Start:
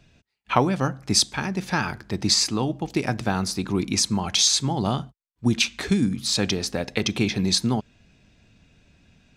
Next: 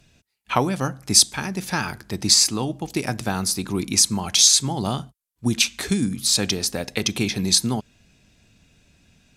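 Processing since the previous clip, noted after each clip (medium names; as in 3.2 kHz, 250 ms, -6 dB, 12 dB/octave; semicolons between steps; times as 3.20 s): peaking EQ 12 kHz +14.5 dB 1.4 oct; trim -1 dB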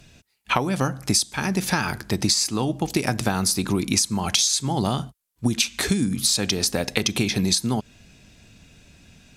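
compression 16:1, threshold -24 dBFS, peak gain reduction 16 dB; trim +6.5 dB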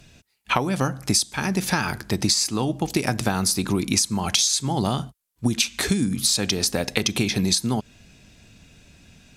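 no audible change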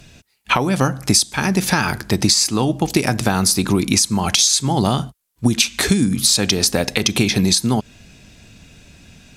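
loudness maximiser +7 dB; trim -1 dB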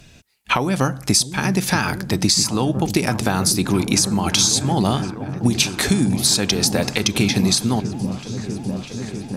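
delay with an opening low-pass 647 ms, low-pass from 200 Hz, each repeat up 1 oct, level -6 dB; trim -2 dB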